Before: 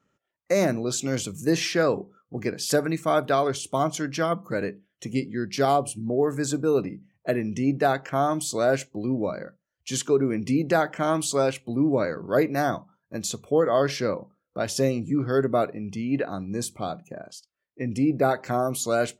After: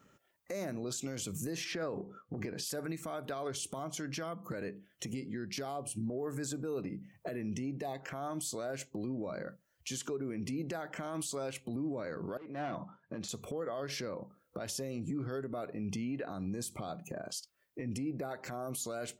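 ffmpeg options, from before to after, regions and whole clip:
-filter_complex "[0:a]asettb=1/sr,asplit=3[s0][s1][s2];[s0]atrim=end=1.644[s3];[s1]atrim=start=1.64:end=2.64,asetpts=PTS-STARTPTS,afade=t=in:d=0.004:c=qsin,afade=t=out:st=0.996:d=0.004:c=qsin,lowpass=f=2800:p=1,acompressor=threshold=0.0316:ratio=3:attack=3.2:release=140:knee=1:detection=peak[s4];[s2]atrim=start=2.636[s5];[s3][s4]acrossfade=d=0.004:c1=hsin:c2=qsin[s6];[s6][s5]acrossfade=d=0.004:c1=qsin:c2=hsin,asettb=1/sr,asplit=3[s7][s8][s9];[s7]atrim=end=7.494[s10];[s8]atrim=start=7.49:end=8.01,asetpts=PTS-STARTPTS,afade=t=in:d=0.004:c=qsin,afade=t=out:st=0.516:d=0.004:c=qsin,asuperstop=centerf=1400:order=4:qfactor=2.4,equalizer=f=1500:w=7.2:g=-6[s11];[s9]atrim=start=8.006[s12];[s10][s11]acrossfade=d=0.004:c1=hsin:c2=qsin[s13];[s13][s12]acrossfade=d=0.004:c1=qsin:c2=hsin,asettb=1/sr,asplit=3[s14][s15][s16];[s14]atrim=end=12.374[s17];[s15]atrim=start=12.37:end=13.29,asetpts=PTS-STARTPTS,afade=t=in:d=0.004:c=qsin,afade=t=out:st=0.916:d=0.004:c=qsin,volume=13.3,asoftclip=hard,volume=0.075,acompressor=threshold=0.0141:ratio=12:attack=3.2:release=140:knee=1:detection=peak,highpass=100,lowpass=3000[s18];[s16]atrim=start=13.286[s19];[s17][s18]acrossfade=d=0.004:c1=hsin:c2=qsin[s20];[s20][s19]acrossfade=d=0.004:c1=qsin:c2=hsin,acompressor=threshold=0.0126:ratio=5,highshelf=f=11000:g=8.5,alimiter=level_in=4.22:limit=0.0631:level=0:latency=1:release=96,volume=0.237,volume=2.24"

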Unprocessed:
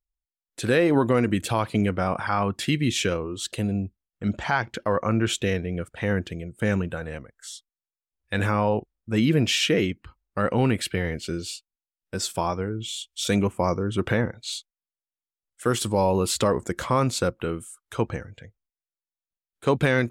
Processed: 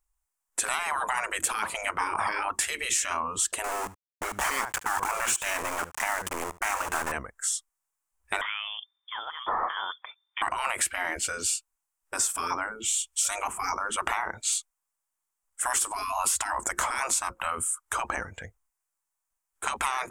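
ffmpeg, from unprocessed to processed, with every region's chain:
-filter_complex "[0:a]asettb=1/sr,asplit=3[s0][s1][s2];[s0]atrim=end=3.644[s3];[s1]atrim=start=3.64:end=7.12,asetpts=PTS-STARTPTS,afade=t=in:d=0.004:c=qsin,afade=t=out:st=3.476:d=0.004:c=qsin,aeval=exprs='val(0)*gte(abs(val(0)),0.0224)':c=same,aecho=1:1:73:0.1,atrim=end_sample=153468[s4];[s2]atrim=start=7.116[s5];[s3][s4]acrossfade=d=0.004:c1=hsin:c2=qsin[s6];[s6][s5]acrossfade=d=0.004:c1=qsin:c2=hsin,asettb=1/sr,asplit=3[s7][s8][s9];[s7]atrim=end=8.414[s10];[s8]atrim=start=8.41:end=10.42,asetpts=PTS-STARTPTS,afade=t=in:d=0.004:c=qsin,afade=t=out:st=2.006:d=0.004:c=qsin,equalizer=f=830:t=o:w=0.77:g=-8,acompressor=threshold=0.0316:ratio=12:attack=3.2:release=140:knee=1:detection=peak,lowpass=f=3100:t=q:w=0.5098,lowpass=f=3100:t=q:w=0.6013,lowpass=f=3100:t=q:w=0.9,lowpass=f=3100:t=q:w=2.563,afreqshift=-3600[s11];[s9]atrim=start=10.416[s12];[s10][s11]acrossfade=d=0.004:c1=hsin:c2=qsin[s13];[s13][s12]acrossfade=d=0.004:c1=qsin:c2=hsin,afftfilt=real='re*lt(hypot(re,im),0.1)':imag='im*lt(hypot(re,im),0.1)':win_size=1024:overlap=0.75,equalizer=f=125:t=o:w=1:g=-11,equalizer=f=250:t=o:w=1:g=-6,equalizer=f=500:t=o:w=1:g=-5,equalizer=f=1000:t=o:w=1:g=9,equalizer=f=4000:t=o:w=1:g=-11,equalizer=f=8000:t=o:w=1:g=9,acompressor=threshold=0.0251:ratio=6,volume=2.66"

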